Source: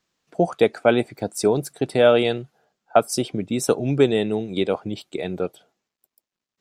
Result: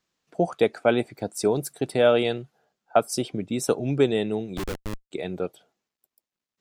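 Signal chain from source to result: 1.50–1.92 s: treble shelf 9.5 kHz +9.5 dB; 4.57–5.11 s: Schmitt trigger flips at -23 dBFS; trim -3.5 dB

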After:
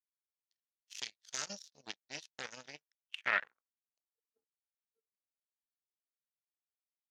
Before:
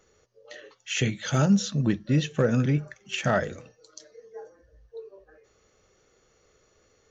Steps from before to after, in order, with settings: power-law waveshaper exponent 3; band-pass sweep 5 kHz -> 210 Hz, 2.85–4.55 s; trim +6.5 dB

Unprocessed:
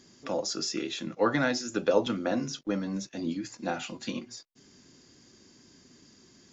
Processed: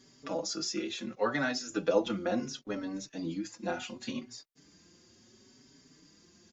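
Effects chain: 1.15–1.70 s: bass shelf 210 Hz -9.5 dB; endless flanger 4.8 ms +0.71 Hz

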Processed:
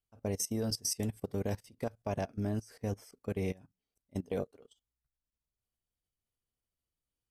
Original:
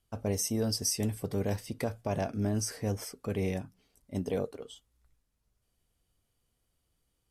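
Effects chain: level held to a coarse grid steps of 16 dB; upward expansion 1.5:1, over -55 dBFS

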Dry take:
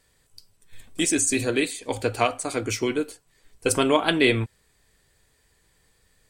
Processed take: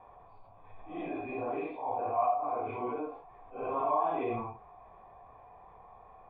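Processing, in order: phase randomisation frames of 200 ms; cascade formant filter a; level flattener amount 50%; trim +2 dB

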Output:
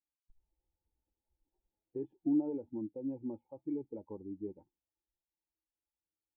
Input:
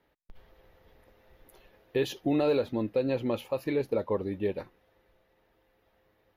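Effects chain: expander on every frequency bin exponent 1.5; cascade formant filter u

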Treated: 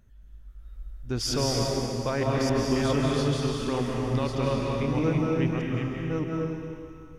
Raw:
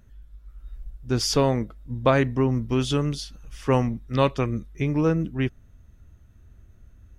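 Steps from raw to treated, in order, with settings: chunks repeated in reverse 624 ms, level -4 dB; peak limiter -12 dBFS, peak gain reduction 7 dB; algorithmic reverb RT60 2.4 s, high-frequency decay 1×, pre-delay 120 ms, DRR -1.5 dB; trim -5 dB

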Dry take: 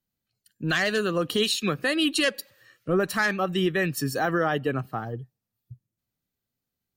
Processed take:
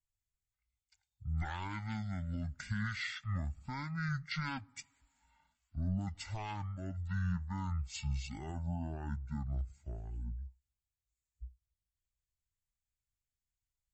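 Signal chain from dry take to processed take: amplifier tone stack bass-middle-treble 10-0-1; speed mistake 15 ips tape played at 7.5 ips; trim +7.5 dB

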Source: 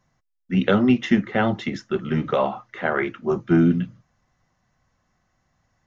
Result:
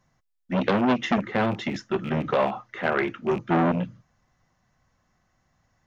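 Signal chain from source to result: rattle on loud lows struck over -31 dBFS, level -28 dBFS; transformer saturation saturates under 1.2 kHz

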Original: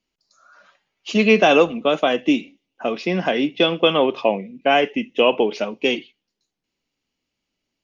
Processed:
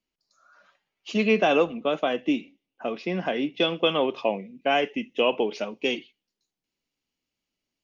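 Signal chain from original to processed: treble shelf 5.8 kHz -3 dB, from 1.27 s -9.5 dB, from 3.54 s +4 dB; trim -6.5 dB

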